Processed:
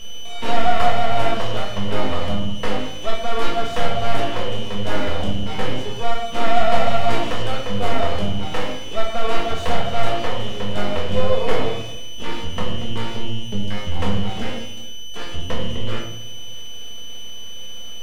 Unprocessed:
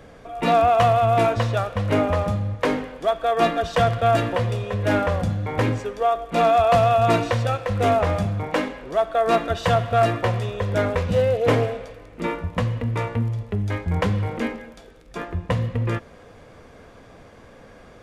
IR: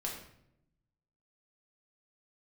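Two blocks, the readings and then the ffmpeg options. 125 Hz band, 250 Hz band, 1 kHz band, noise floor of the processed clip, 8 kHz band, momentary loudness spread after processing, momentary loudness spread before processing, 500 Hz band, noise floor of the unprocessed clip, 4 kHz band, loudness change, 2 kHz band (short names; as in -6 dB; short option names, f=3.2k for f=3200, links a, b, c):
-5.0 dB, -1.0 dB, -2.5 dB, -26 dBFS, +5.0 dB, 13 LU, 10 LU, -3.5 dB, -47 dBFS, +8.0 dB, -3.0 dB, 0.0 dB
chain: -filter_complex "[0:a]aeval=exprs='val(0)+0.0282*sin(2*PI*3000*n/s)':c=same,aeval=exprs='max(val(0),0)':c=same[a];[1:a]atrim=start_sample=2205,asetrate=48510,aresample=44100[b];[a][b]afir=irnorm=-1:irlink=0,volume=1.5dB"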